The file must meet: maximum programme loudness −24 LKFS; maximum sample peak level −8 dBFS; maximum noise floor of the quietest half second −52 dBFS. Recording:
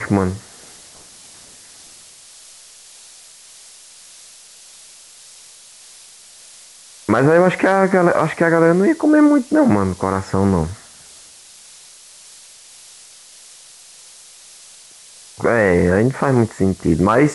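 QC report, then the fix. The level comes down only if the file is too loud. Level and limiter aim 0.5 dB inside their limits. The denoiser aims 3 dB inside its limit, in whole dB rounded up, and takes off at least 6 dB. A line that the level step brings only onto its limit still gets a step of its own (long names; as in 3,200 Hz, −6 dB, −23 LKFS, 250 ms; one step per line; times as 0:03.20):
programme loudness −15.5 LKFS: out of spec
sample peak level −3.5 dBFS: out of spec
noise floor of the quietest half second −43 dBFS: out of spec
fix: broadband denoise 6 dB, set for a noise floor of −43 dBFS
level −9 dB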